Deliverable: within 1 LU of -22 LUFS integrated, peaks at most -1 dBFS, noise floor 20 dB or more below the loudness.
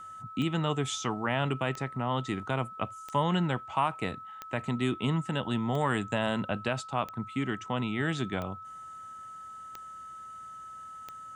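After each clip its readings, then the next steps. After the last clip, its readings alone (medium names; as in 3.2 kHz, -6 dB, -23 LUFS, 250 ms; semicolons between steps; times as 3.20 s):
clicks found 9; steady tone 1.3 kHz; tone level -42 dBFS; loudness -31.5 LUFS; peak level -14.5 dBFS; loudness target -22.0 LUFS
-> de-click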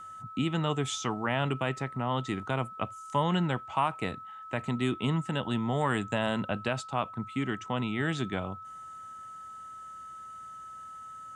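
clicks found 0; steady tone 1.3 kHz; tone level -42 dBFS
-> band-stop 1.3 kHz, Q 30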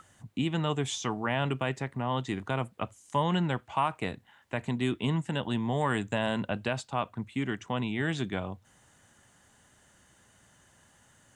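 steady tone not found; loudness -31.5 LUFS; peak level -15.0 dBFS; loudness target -22.0 LUFS
-> trim +9.5 dB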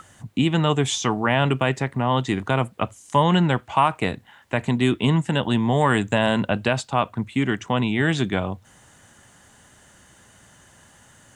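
loudness -22.0 LUFS; peak level -5.5 dBFS; noise floor -54 dBFS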